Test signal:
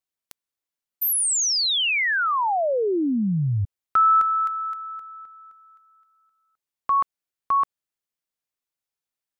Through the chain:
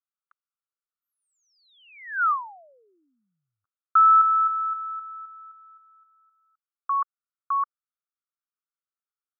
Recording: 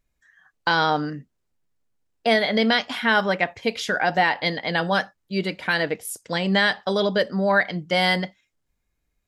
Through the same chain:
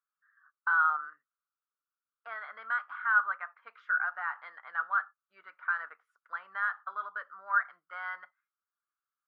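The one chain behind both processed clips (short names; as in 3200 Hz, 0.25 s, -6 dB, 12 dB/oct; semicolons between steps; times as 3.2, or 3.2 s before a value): in parallel at -12 dB: wavefolder -15 dBFS; on the sum: Butterworth band-pass 1300 Hz, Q 4.1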